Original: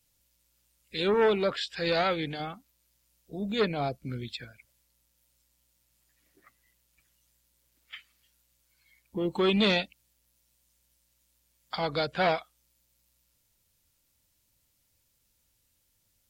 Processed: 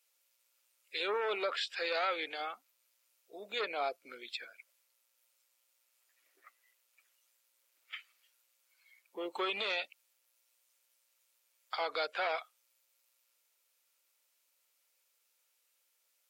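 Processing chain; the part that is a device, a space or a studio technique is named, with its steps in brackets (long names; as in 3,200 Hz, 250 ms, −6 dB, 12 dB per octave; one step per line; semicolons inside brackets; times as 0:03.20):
laptop speaker (high-pass filter 440 Hz 24 dB per octave; parametric band 1,300 Hz +5.5 dB 0.35 octaves; parametric band 2,400 Hz +5 dB 0.5 octaves; brickwall limiter −21 dBFS, peak gain reduction 9.5 dB)
level −3.5 dB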